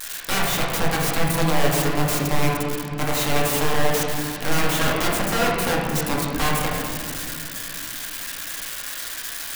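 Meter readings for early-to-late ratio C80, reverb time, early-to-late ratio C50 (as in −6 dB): 2.0 dB, 2.4 s, 0.0 dB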